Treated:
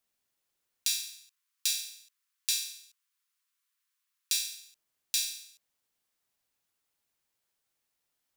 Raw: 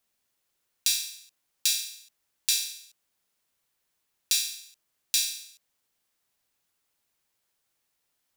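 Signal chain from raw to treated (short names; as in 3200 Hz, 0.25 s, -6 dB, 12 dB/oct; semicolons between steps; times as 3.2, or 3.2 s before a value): 0.87–4.57 steep high-pass 990 Hz 96 dB/oct; gain -4.5 dB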